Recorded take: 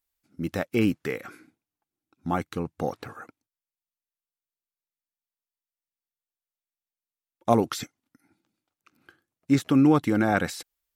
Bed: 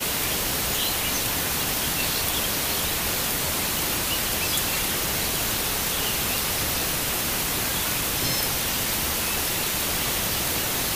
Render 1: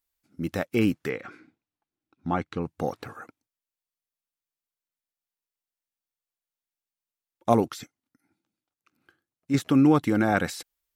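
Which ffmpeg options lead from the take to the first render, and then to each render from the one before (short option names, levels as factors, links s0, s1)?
-filter_complex "[0:a]asettb=1/sr,asplit=3[s0][s1][s2];[s0]atrim=end=1.094[s3];[s1]atrim=start=1.09:end=2.63,asetpts=PTS-STARTPTS,afade=t=in:d=0.004:c=qsin,afade=t=out:st=1.536:d=0.004:c=qsin,lowpass=4300[s4];[s2]atrim=start=2.626[s5];[s3][s4]acrossfade=d=0.004:c1=hsin:c2=qsin[s6];[s6][s5]acrossfade=d=0.004:c1=qsin:c2=hsin,asplit=3[s7][s8][s9];[s7]atrim=end=7.682[s10];[s8]atrim=start=7.678:end=9.542,asetpts=PTS-STARTPTS,volume=0.473[s11];[s9]atrim=start=9.538[s12];[s10][s11]acrossfade=d=0.004:c1=hsin:c2=hsin[s13];[s13][s12]acrossfade=d=0.004:c1=hsin:c2=hsin"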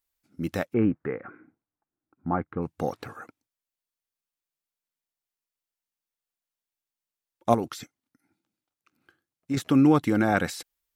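-filter_complex "[0:a]asplit=3[s0][s1][s2];[s0]afade=t=out:st=0.72:d=0.02[s3];[s1]lowpass=f=1700:w=0.5412,lowpass=f=1700:w=1.3066,afade=t=in:st=0.72:d=0.02,afade=t=out:st=2.61:d=0.02[s4];[s2]afade=t=in:st=2.61:d=0.02[s5];[s3][s4][s5]amix=inputs=3:normalize=0,asettb=1/sr,asplit=3[s6][s7][s8];[s6]atrim=end=7.544[s9];[s7]atrim=start=7.54:end=9.57,asetpts=PTS-STARTPTS,afade=t=in:d=0.004:c=qsin,afade=t=out:st=2.026:d=0.004:c=qsin,acompressor=threshold=0.0794:ratio=6:attack=3.2:release=140:knee=1:detection=peak[s10];[s8]atrim=start=9.566[s11];[s9][s10]acrossfade=d=0.004:c1=hsin:c2=qsin[s12];[s12][s11]acrossfade=d=0.004:c1=qsin:c2=hsin"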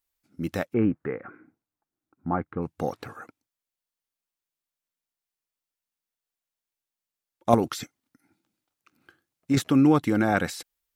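-filter_complex "[0:a]asplit=3[s0][s1][s2];[s0]atrim=end=7.532[s3];[s1]atrim=start=7.528:end=9.642,asetpts=PTS-STARTPTS,volume=1.78[s4];[s2]atrim=start=9.638[s5];[s3][s4]acrossfade=d=0.004:c1=hsin:c2=hsin[s6];[s6][s5]acrossfade=d=0.004:c1=hsin:c2=hsin"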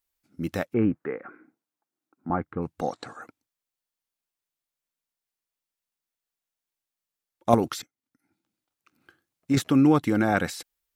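-filter_complex "[0:a]asettb=1/sr,asplit=3[s0][s1][s2];[s0]atrim=end=0.994[s3];[s1]atrim=start=0.99:end=2.3,asetpts=PTS-STARTPTS,afade=t=in:d=0.004:c=qsin,afade=t=out:st=1.306:d=0.004:c=qsin,highpass=220[s4];[s2]atrim=start=2.296[s5];[s3][s4]acrossfade=d=0.004:c1=hsin:c2=qsin[s6];[s6][s5]acrossfade=d=0.004:c1=qsin:c2=hsin,asettb=1/sr,asplit=3[s7][s8][s9];[s7]atrim=end=2.814[s10];[s8]atrim=start=2.81:end=3.22,asetpts=PTS-STARTPTS,afade=t=in:d=0.004:c=qsin,afade=t=out:st=0.406:d=0.004:c=qsin,highpass=170,equalizer=f=410:t=q:w=4:g=-4,equalizer=f=700:t=q:w=4:g=4,equalizer=f=2500:t=q:w=4:g=-5,equalizer=f=4000:t=q:w=4:g=7,equalizer=f=7500:t=q:w=4:g=10,lowpass=f=9100:w=0.5412,lowpass=f=9100:w=1.3066[s11];[s9]atrim=start=3.216[s12];[s10][s11]acrossfade=d=0.004:c1=hsin:c2=qsin[s13];[s13][s12]acrossfade=d=0.004:c1=qsin:c2=hsin,asplit=2[s14][s15];[s14]atrim=end=7.82,asetpts=PTS-STARTPTS,afade=t=out:st=7.816:d=0.004:c=hsin:silence=0.1[s16];[s15]atrim=start=7.82,asetpts=PTS-STARTPTS,afade=t=in:d=1.74:c=qsin:silence=0.1[s17];[s16][s17]concat=n=2:v=0:a=1"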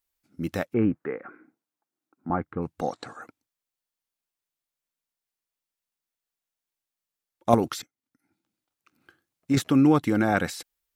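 -af anull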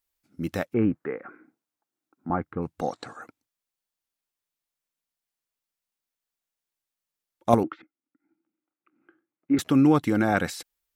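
-filter_complex "[0:a]asettb=1/sr,asplit=3[s0][s1][s2];[s0]atrim=end=7.634[s3];[s1]atrim=start=7.63:end=9.59,asetpts=PTS-STARTPTS,afade=t=in:d=0.004:c=qsin,afade=t=out:st=1.956:d=0.004:c=qsin,highpass=250,equalizer=f=320:t=q:w=4:g=9,equalizer=f=460:t=q:w=4:g=-5,equalizer=f=670:t=q:w=4:g=-6,equalizer=f=1000:t=q:w=4:g=-6,equalizer=f=1700:t=q:w=4:g=-6,lowpass=f=2000:w=0.5412,lowpass=f=2000:w=1.3066[s4];[s2]atrim=start=9.586[s5];[s3][s4]acrossfade=d=0.004:c1=hsin:c2=qsin[s6];[s6][s5]acrossfade=d=0.004:c1=qsin:c2=hsin"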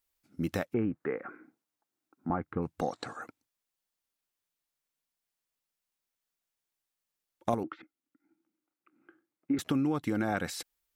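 -af "acompressor=threshold=0.0447:ratio=5"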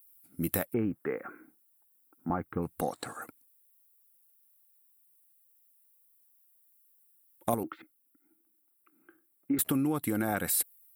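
-af "aexciter=amount=8.1:drive=7.9:freq=8700"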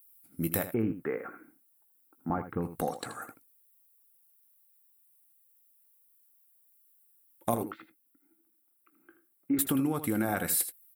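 -filter_complex "[0:a]asplit=2[s0][s1];[s1]adelay=18,volume=0.2[s2];[s0][s2]amix=inputs=2:normalize=0,asplit=2[s3][s4];[s4]aecho=0:1:80:0.266[s5];[s3][s5]amix=inputs=2:normalize=0"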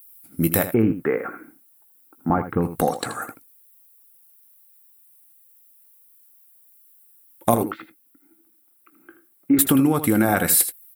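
-af "volume=3.55,alimiter=limit=0.794:level=0:latency=1"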